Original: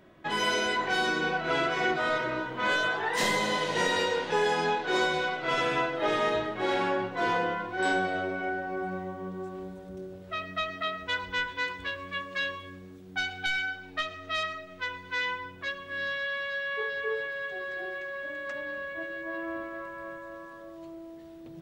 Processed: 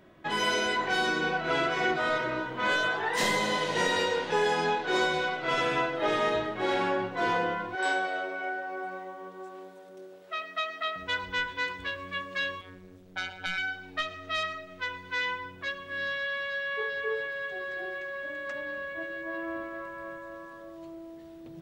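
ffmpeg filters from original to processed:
-filter_complex "[0:a]asettb=1/sr,asplit=3[a][b][c];[a]atrim=end=7.754[d];[b]atrim=start=7.75:end=10.96,asetpts=PTS-STARTPTS,afade=t=in:d=0.004:c=qsin,afade=t=out:st=3.206:d=0.004:c=qsin,highpass=480[e];[c]atrim=start=10.956[f];[d][e]acrossfade=d=0.004:c1=hsin:c2=qsin[g];[g][f]acrossfade=d=0.004:c1=qsin:c2=hsin,asettb=1/sr,asplit=3[h][i][j];[h]atrim=end=12.614[k];[i]atrim=start=12.61:end=13.58,asetpts=PTS-STARTPTS,afade=t=in:d=0.004:c=qsin,afade=t=out:st=0.966:d=0.004:c=qsin,tremolo=f=180:d=0.889[l];[j]atrim=start=13.576[m];[k][l]acrossfade=d=0.004:c1=hsin:c2=qsin[n];[n][m]acrossfade=d=0.004:c1=qsin:c2=hsin"

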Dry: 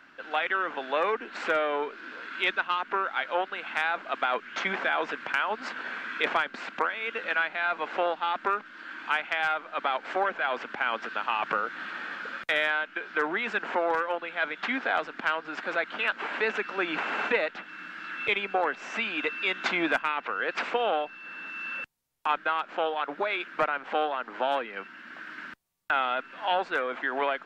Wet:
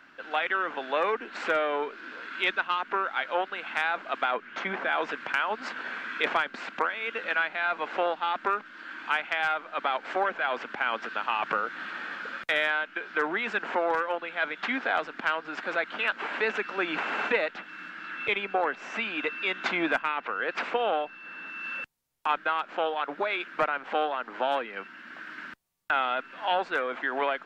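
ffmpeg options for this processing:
-filter_complex "[0:a]asettb=1/sr,asplit=3[a][b][c];[a]atrim=end=4.314[d];[b]atrim=start=4.31:end=4.89,asetpts=PTS-STARTPTS,afade=t=in:d=0.004:c=qsin,afade=t=out:st=0.576:d=0.004:c=qsin,highshelf=f=2.8k:g=-9.5[e];[c]atrim=start=4.886[f];[d][e]acrossfade=d=0.004:c1=hsin:c2=qsin[g];[g][f]acrossfade=d=0.004:c1=qsin:c2=hsin,asettb=1/sr,asplit=3[h][i][j];[h]atrim=end=17.904[k];[i]atrim=start=17.9:end=21.64,asetpts=PTS-STARTPTS,afade=t=in:d=0.004:c=qsin,afade=t=out:st=3.736:d=0.004:c=qsin,highshelf=f=4.3k:g=-5[l];[j]atrim=start=21.636[m];[k][l]acrossfade=d=0.004:c1=hsin:c2=qsin[n];[n][m]acrossfade=d=0.004:c1=qsin:c2=hsin"

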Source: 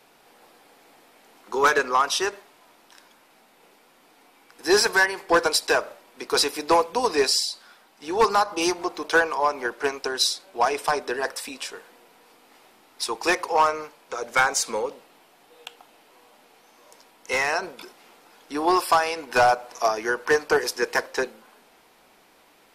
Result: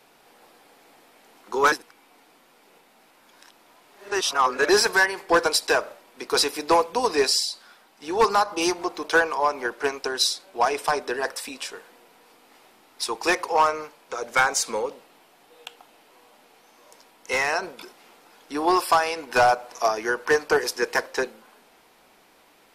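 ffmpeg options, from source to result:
-filter_complex "[0:a]asplit=3[a][b][c];[a]atrim=end=1.722[d];[b]atrim=start=1.718:end=4.692,asetpts=PTS-STARTPTS,areverse[e];[c]atrim=start=4.688[f];[d][e]acrossfade=d=0.004:c1=hsin:c2=hsin[g];[g][f]acrossfade=d=0.004:c1=hsin:c2=hsin"

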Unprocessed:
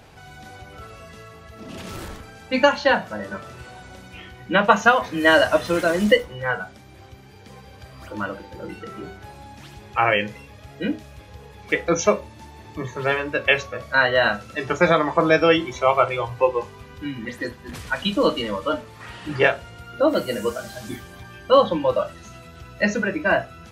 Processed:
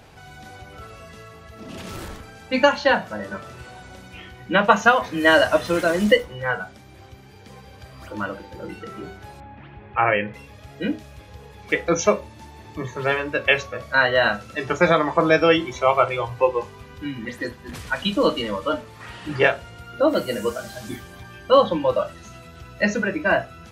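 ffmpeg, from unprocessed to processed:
-filter_complex "[0:a]asettb=1/sr,asplit=3[a][b][c];[a]atrim=end=9.404[d];[b]atrim=start=9.4:end=10.34,asetpts=PTS-STARTPTS,afade=t=in:d=0.004:c=qsin,afade=t=out:st=0.936:d=0.004:c=qsin,lowpass=f=2.5k:w=0.5412,lowpass=f=2.5k:w=1.3066[e];[c]atrim=start=10.336[f];[d][e]acrossfade=d=0.004:c1=hsin:c2=qsin[g];[g][f]acrossfade=d=0.004:c1=qsin:c2=hsin"

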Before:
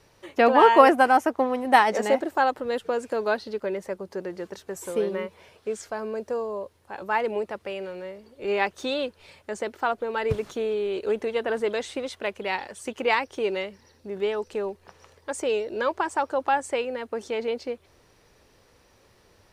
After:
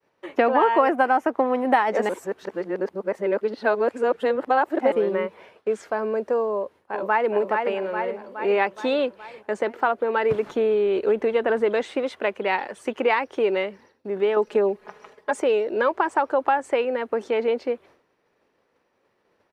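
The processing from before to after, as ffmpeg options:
-filter_complex "[0:a]asplit=2[a][b];[b]afade=t=in:st=6.51:d=0.01,afade=t=out:st=7.32:d=0.01,aecho=0:1:420|840|1260|1680|2100|2520|2940|3360:0.530884|0.318531|0.191118|0.114671|0.0688026|0.0412816|0.0247689|0.0148614[c];[a][c]amix=inputs=2:normalize=0,asettb=1/sr,asplit=3[d][e][f];[d]atrim=end=10.464[g];[e]atrim=start=10.46:end=11.83,asetpts=PTS-STARTPTS,afade=t=in:d=0.004:c=qsin,afade=t=out:st=1.366:d=0.004:c=qsin,lowshelf=f=110:g=11.5[h];[f]atrim=start=11.826[i];[g][h]acrossfade=d=0.004:c1=hsin:c2=qsin[j];[j][i]acrossfade=d=0.004:c1=qsin:c2=hsin,asettb=1/sr,asplit=3[k][l][m];[k]atrim=end=14.364[n];[l]atrim=start=14.36:end=15.4,asetpts=PTS-STARTPTS,afade=t=in:d=0.004:c=qsin,afade=t=out:st=1.036:d=0.004:c=qsin,aecho=1:1:4.8:0.97,atrim=end_sample=45864[o];[m]atrim=start=15.396[p];[n][o]acrossfade=d=0.004:c1=hsin:c2=qsin[q];[q][p]acrossfade=d=0.004:c1=qsin:c2=hsin,asplit=3[r][s][t];[r]atrim=end=2.092[u];[s]atrim=start=2.088:end=4.922,asetpts=PTS-STARTPTS,areverse[v];[t]atrim=start=4.918[w];[u][v]acrossfade=d=0.004:c1=hsin:c2=hsin[x];[x][w]acrossfade=d=0.004:c1=hsin:c2=hsin,agate=range=-33dB:threshold=-49dB:ratio=3:detection=peak,acrossover=split=170 2800:gain=0.1 1 0.2[y][z][aa];[y][z][aa]amix=inputs=3:normalize=0,acompressor=threshold=-23dB:ratio=4,volume=6.5dB"

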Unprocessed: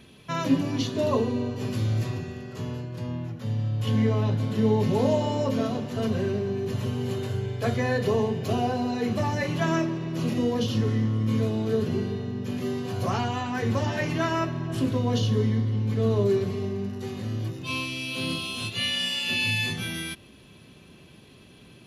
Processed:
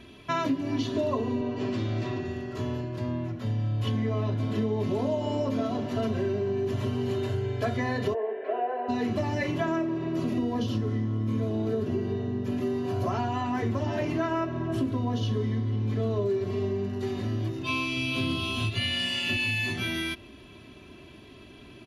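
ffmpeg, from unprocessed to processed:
-filter_complex "[0:a]asettb=1/sr,asplit=3[a][b][c];[a]atrim=end=1.414[d];[b]atrim=start=1.41:end=2.25,asetpts=PTS-STARTPTS,afade=t=in:d=0.004:c=qsin,afade=t=out:st=0.836:d=0.004:c=qsin,highpass=140,lowpass=5.4k[e];[c]atrim=start=2.246[f];[d][e]acrossfade=d=0.004:c1=hsin:c2=qsin[g];[g][f]acrossfade=d=0.004:c1=qsin:c2=hsin,asplit=3[h][i][j];[h]afade=t=out:st=8.13:d=0.02[k];[i]highpass=f=470:w=0.5412,highpass=f=470:w=1.3066,equalizer=f=490:t=q:w=4:g=6,equalizer=f=860:t=q:w=4:g=-6,equalizer=f=1.2k:t=q:w=4:g=-9,equalizer=f=1.7k:t=q:w=4:g=4,lowpass=f=2k:w=0.5412,lowpass=f=2k:w=1.3066,afade=t=in:st=8.13:d=0.02,afade=t=out:st=8.88:d=0.02[l];[j]afade=t=in:st=8.88:d=0.02[m];[k][l][m]amix=inputs=3:normalize=0,asettb=1/sr,asplit=3[n][o][p];[n]atrim=end=9.514[q];[o]atrim=start=9.51:end=15.22,asetpts=PTS-STARTPTS,afade=t=in:d=0.004:c=qsin,afade=t=out:st=5.706:d=0.004:c=qsin,equalizer=f=3.4k:w=0.4:g=-4.5[r];[p]atrim=start=15.216[s];[q][r]acrossfade=d=0.004:c1=hsin:c2=qsin[t];[t][s]acrossfade=d=0.004:c1=qsin:c2=hsin,asettb=1/sr,asplit=3[u][v][w];[u]atrim=end=17.964[x];[v]atrim=start=17.96:end=19.37,asetpts=PTS-STARTPTS,afade=t=in:d=0.004:c=qsin,afade=t=out:st=1.406:d=0.004:c=qsin,equalizer=f=93:w=0.8:g=10.5[y];[w]atrim=start=19.366[z];[x][y]acrossfade=d=0.004:c1=hsin:c2=qsin[aa];[aa][z]acrossfade=d=0.004:c1=qsin:c2=hsin,highshelf=f=5.2k:g=-10,aecho=1:1:3:0.56,acompressor=threshold=-27dB:ratio=6,volume=2.5dB"

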